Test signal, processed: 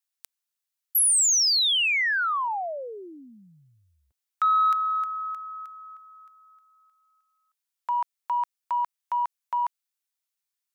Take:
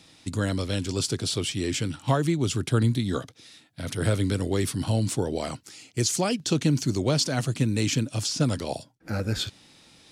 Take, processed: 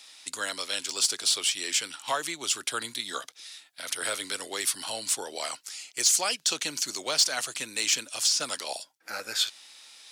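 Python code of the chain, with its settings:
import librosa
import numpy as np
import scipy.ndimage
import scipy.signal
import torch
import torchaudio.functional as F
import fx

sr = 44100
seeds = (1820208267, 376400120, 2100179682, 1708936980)

y = scipy.signal.sosfilt(scipy.signal.butter(2, 920.0, 'highpass', fs=sr, output='sos'), x)
y = fx.high_shelf(y, sr, hz=3600.0, db=6.0)
y = 10.0 ** (-14.5 / 20.0) * np.tanh(y / 10.0 ** (-14.5 / 20.0))
y = y * librosa.db_to_amplitude(2.0)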